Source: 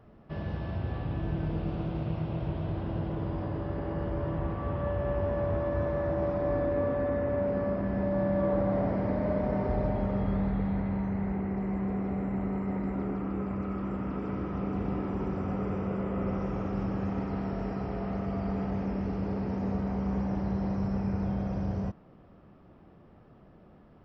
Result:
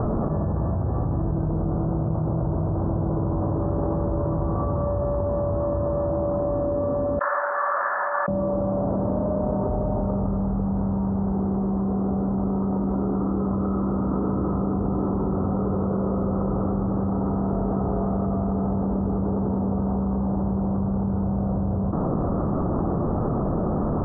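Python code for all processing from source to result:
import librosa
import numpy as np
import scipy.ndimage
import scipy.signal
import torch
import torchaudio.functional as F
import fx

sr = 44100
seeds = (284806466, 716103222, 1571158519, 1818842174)

y = fx.chain(x, sr, fx.ladder_highpass(hz=1500.0, resonance_pct=60),
    fx.detune_double(cents=54), at=(7.19, 8.28))
y = scipy.signal.sosfilt(scipy.signal.butter(8, 1300.0, 'lowpass', fs=sr, output='sos'), y)
y = fx.env_flatten(y, sr, amount_pct=100)
y = y * 10.0 ** (2.0 / 20.0)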